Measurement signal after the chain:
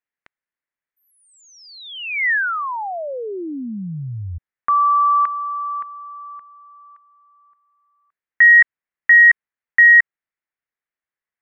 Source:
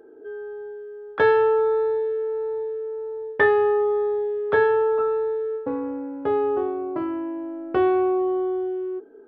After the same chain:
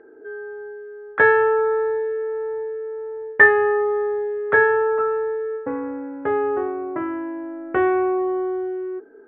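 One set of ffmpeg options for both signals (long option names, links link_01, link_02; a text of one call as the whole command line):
ffmpeg -i in.wav -af "lowpass=frequency=1900:width_type=q:width=3.4" out.wav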